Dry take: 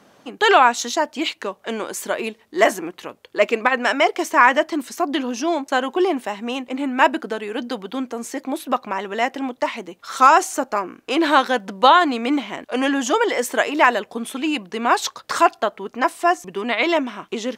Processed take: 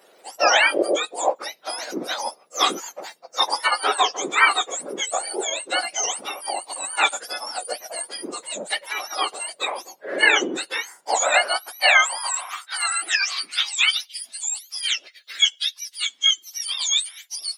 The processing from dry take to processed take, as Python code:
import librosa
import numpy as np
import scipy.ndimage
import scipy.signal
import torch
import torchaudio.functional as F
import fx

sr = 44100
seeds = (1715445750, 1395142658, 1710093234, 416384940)

y = fx.octave_mirror(x, sr, pivot_hz=1500.0)
y = fx.filter_sweep_highpass(y, sr, from_hz=520.0, to_hz=3600.0, start_s=10.9, end_s=14.27, q=2.2)